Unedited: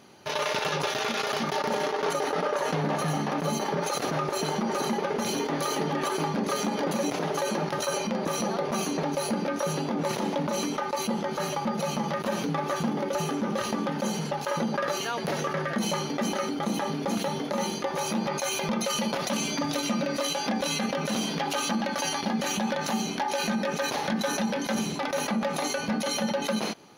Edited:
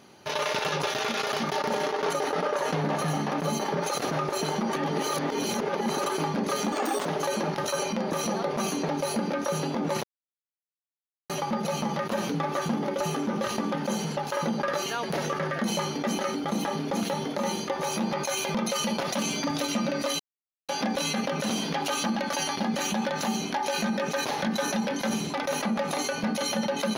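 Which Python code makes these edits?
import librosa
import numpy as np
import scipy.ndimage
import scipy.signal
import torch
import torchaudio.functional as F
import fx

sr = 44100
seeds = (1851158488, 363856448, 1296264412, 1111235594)

y = fx.edit(x, sr, fx.reverse_span(start_s=4.73, length_s=1.33),
    fx.speed_span(start_s=6.72, length_s=0.48, speed=1.43),
    fx.silence(start_s=10.18, length_s=1.26),
    fx.insert_silence(at_s=20.34, length_s=0.49), tone=tone)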